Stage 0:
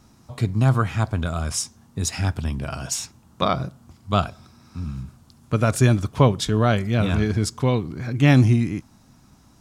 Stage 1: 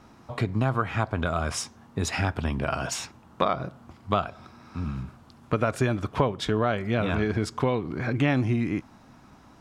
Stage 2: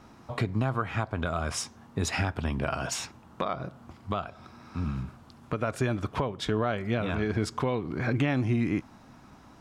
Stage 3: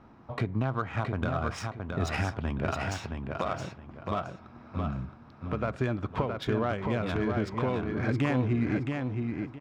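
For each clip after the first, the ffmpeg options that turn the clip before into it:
-af "bass=f=250:g=-9,treble=f=4000:g=-15,acompressor=threshold=0.0398:ratio=4,volume=2.11"
-af "alimiter=limit=0.168:level=0:latency=1:release=415"
-af "aecho=1:1:669|1338|2007|2676:0.596|0.161|0.0434|0.0117,adynamicsmooth=sensitivity=3:basefreq=2600,volume=0.841"

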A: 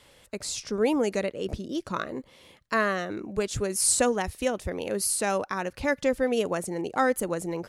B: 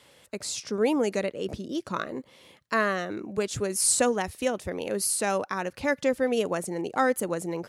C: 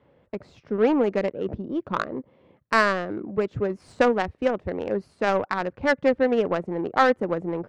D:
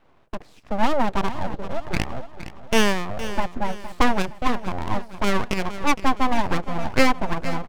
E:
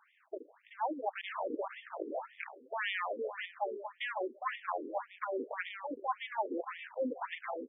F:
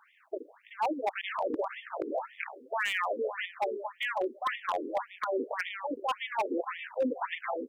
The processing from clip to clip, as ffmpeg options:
-af "highpass=100"
-af "equalizer=f=2400:w=0.52:g=6,adynamicsmooth=sensitivity=0.5:basefreq=630,volume=1.58"
-af "aeval=exprs='abs(val(0))':c=same,aecho=1:1:464|928|1392|1856:0.224|0.0963|0.0414|0.0178,volume=1.5"
-af "areverse,acompressor=threshold=0.0708:ratio=12,areverse,afftfilt=real='re*between(b*sr/1024,350*pow(2600/350,0.5+0.5*sin(2*PI*1.8*pts/sr))/1.41,350*pow(2600/350,0.5+0.5*sin(2*PI*1.8*pts/sr))*1.41)':imag='im*between(b*sr/1024,350*pow(2600/350,0.5+0.5*sin(2*PI*1.8*pts/sr))/1.41,350*pow(2600/350,0.5+0.5*sin(2*PI*1.8*pts/sr))*1.41)':win_size=1024:overlap=0.75,volume=1.33"
-af "aeval=exprs='0.0422*(abs(mod(val(0)/0.0422+3,4)-2)-1)':c=same,volume=1.88"

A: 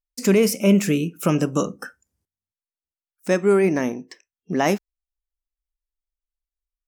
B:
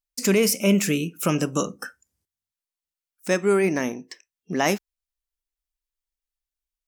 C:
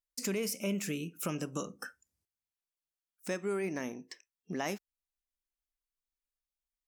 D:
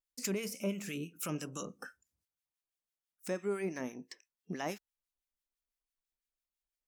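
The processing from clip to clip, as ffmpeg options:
-af "tiltshelf=f=1500:g=-3.5"
-af "acompressor=threshold=0.0316:ratio=2,volume=0.447"
-filter_complex "[0:a]acrossover=split=1300[s0][s1];[s0]aeval=exprs='val(0)*(1-0.7/2+0.7/2*cos(2*PI*6*n/s))':c=same[s2];[s1]aeval=exprs='val(0)*(1-0.7/2-0.7/2*cos(2*PI*6*n/s))':c=same[s3];[s2][s3]amix=inputs=2:normalize=0,volume=1.12"

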